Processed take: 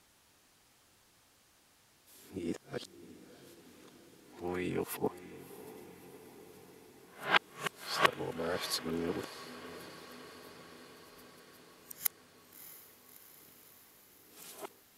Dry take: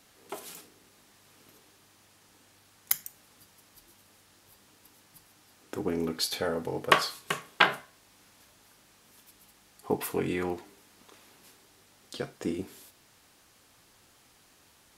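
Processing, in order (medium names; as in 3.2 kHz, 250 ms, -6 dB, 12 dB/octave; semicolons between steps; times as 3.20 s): reverse the whole clip; echo that smears into a reverb 634 ms, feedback 67%, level -14.5 dB; trim -5.5 dB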